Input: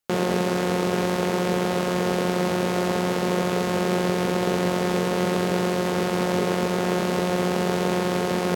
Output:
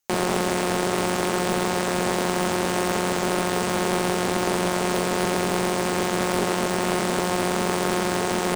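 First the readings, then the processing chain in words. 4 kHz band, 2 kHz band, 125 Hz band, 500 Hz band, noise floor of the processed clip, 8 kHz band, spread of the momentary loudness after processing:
+2.5 dB, +2.5 dB, -3.0 dB, -1.0 dB, -25 dBFS, +6.5 dB, 0 LU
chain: graphic EQ with 31 bands 160 Hz -6 dB, 500 Hz -5 dB, 6.3 kHz +10 dB, 16 kHz +7 dB; loudspeaker Doppler distortion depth 0.57 ms; trim +2 dB

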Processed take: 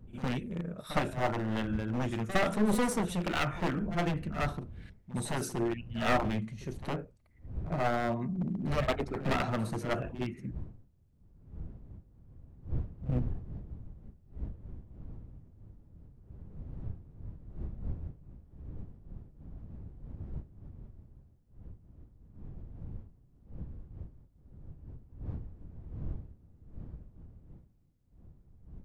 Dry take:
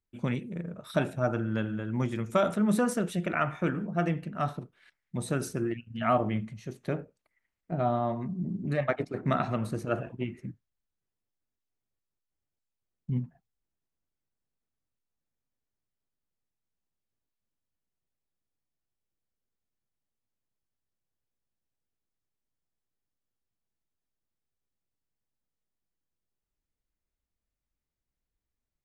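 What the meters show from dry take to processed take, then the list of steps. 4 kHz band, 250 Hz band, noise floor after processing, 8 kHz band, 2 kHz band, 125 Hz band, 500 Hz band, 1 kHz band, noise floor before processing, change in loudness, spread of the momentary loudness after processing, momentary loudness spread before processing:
+4.5 dB, -2.0 dB, -63 dBFS, +0.5 dB, +1.0 dB, -1.5 dB, -3.0 dB, -1.5 dB, under -85 dBFS, -3.5 dB, 21 LU, 11 LU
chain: one-sided wavefolder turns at -26.5 dBFS; wind noise 100 Hz -44 dBFS; reverse echo 60 ms -13.5 dB

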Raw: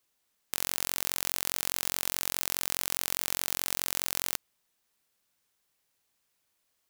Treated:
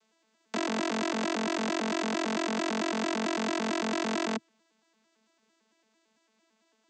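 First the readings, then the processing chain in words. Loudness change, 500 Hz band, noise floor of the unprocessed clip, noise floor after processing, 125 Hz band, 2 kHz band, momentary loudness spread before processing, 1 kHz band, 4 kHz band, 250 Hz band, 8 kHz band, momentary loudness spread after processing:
-0.5 dB, +14.5 dB, -77 dBFS, -73 dBFS, +5.0 dB, +4.5 dB, 2 LU, +9.5 dB, -1.5 dB, +19.5 dB, -9.5 dB, 2 LU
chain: vocoder on a broken chord bare fifth, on A3, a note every 112 ms; trim +7.5 dB

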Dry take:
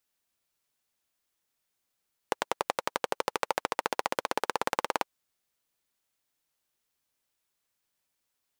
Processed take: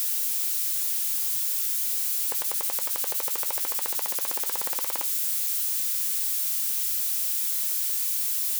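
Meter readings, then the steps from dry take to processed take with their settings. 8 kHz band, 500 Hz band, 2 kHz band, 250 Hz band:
+20.0 dB, -8.5 dB, -3.5 dB, no reading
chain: zero-crossing glitches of -14 dBFS; trim -9 dB

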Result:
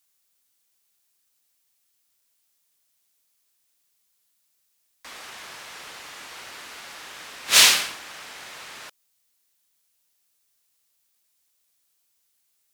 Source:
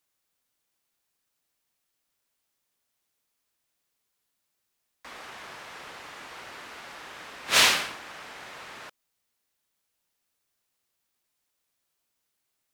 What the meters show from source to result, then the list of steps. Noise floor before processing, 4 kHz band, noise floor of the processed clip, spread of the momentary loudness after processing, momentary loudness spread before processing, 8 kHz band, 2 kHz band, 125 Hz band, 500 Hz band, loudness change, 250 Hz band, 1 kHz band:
-80 dBFS, +5.5 dB, -71 dBFS, 13 LU, 22 LU, +8.5 dB, +2.5 dB, no reading, -1.0 dB, +4.5 dB, -1.5 dB, 0.0 dB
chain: treble shelf 2.9 kHz +11.5 dB; trim -1.5 dB

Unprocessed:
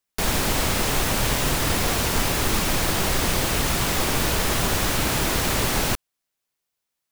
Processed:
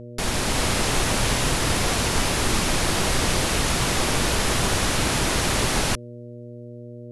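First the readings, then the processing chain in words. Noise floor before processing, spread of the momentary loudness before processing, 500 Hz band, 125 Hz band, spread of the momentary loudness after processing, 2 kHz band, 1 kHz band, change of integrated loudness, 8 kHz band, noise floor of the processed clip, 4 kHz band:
-82 dBFS, 0 LU, +0.5 dB, +0.5 dB, 18 LU, +0.5 dB, +0.5 dB, 0.0 dB, +0.5 dB, -39 dBFS, +1.0 dB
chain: level rider gain up to 3 dB; mains buzz 120 Hz, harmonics 5, -36 dBFS -3 dB/octave; Chebyshev low-pass 11 kHz, order 4; trim -1.5 dB

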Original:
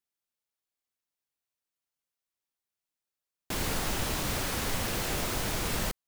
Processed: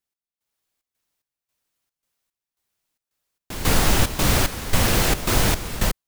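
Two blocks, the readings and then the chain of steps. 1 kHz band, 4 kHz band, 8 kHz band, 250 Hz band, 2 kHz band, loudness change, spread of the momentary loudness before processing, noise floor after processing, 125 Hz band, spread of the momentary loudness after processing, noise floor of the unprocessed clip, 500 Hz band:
+9.5 dB, +9.0 dB, +9.5 dB, +10.5 dB, +9.5 dB, +10.0 dB, 1 LU, under -85 dBFS, +12.5 dB, 6 LU, under -85 dBFS, +9.5 dB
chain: bass shelf 140 Hz +5 dB; level rider gain up to 9 dB; trance gate "x..xxx.x" 111 bpm -12 dB; trim +2.5 dB

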